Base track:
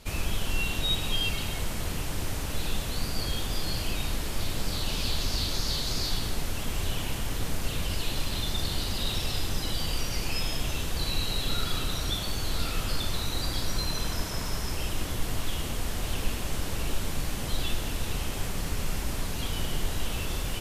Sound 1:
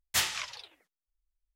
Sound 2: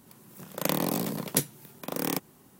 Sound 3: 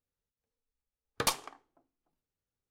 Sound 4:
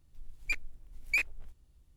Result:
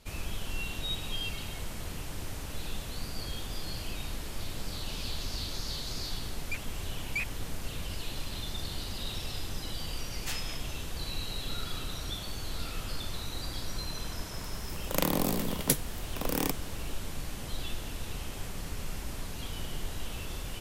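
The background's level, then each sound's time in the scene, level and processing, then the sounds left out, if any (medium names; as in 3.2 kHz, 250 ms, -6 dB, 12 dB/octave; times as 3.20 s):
base track -7 dB
6.02 s: add 4 -5 dB
10.12 s: add 1 -11 dB
14.33 s: add 2 -1 dB
not used: 3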